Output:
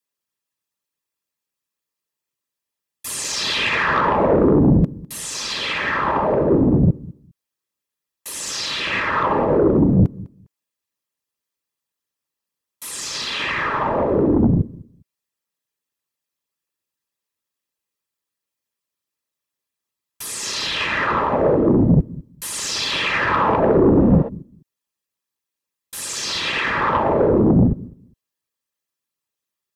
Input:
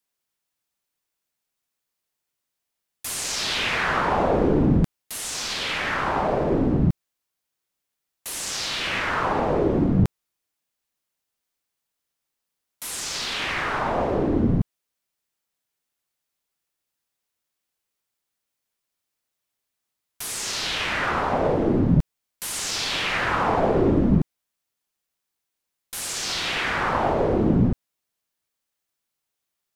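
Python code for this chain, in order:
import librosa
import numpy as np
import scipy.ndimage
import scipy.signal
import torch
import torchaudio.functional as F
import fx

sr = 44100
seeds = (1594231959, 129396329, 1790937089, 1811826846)

p1 = fx.envelope_sharpen(x, sr, power=1.5)
p2 = fx.notch_comb(p1, sr, f0_hz=730.0)
p3 = fx.echo_feedback(p2, sr, ms=203, feedback_pct=25, wet_db=-16.0)
p4 = fx.spec_repair(p3, sr, seeds[0], start_s=23.93, length_s=0.33, low_hz=440.0, high_hz=12000.0, source='before')
p5 = fx.fold_sine(p4, sr, drive_db=7, ceiling_db=-8.5)
p6 = p4 + F.gain(torch.from_numpy(p5), -5.0).numpy()
y = fx.upward_expand(p6, sr, threshold_db=-32.0, expansion=1.5)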